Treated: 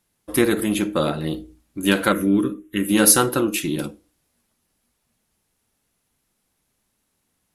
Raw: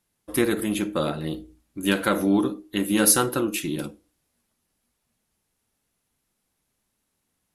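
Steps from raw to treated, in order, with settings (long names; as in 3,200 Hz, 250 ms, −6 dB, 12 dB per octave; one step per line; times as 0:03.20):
0:02.12–0:02.89: phaser with its sweep stopped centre 1,900 Hz, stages 4
level +4 dB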